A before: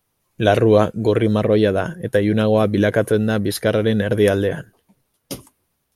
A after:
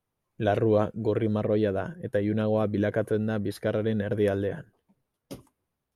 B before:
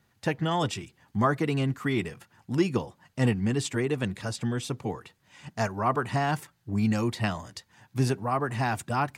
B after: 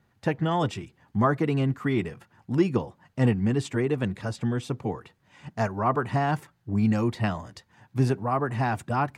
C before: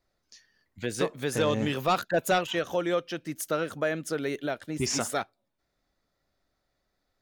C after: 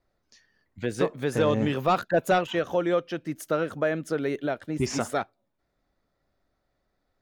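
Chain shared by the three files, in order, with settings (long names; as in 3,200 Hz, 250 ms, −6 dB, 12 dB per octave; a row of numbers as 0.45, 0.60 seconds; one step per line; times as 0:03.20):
high-shelf EQ 2,700 Hz −10.5 dB
loudness normalisation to −27 LKFS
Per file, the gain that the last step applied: −9.0, +2.5, +3.5 decibels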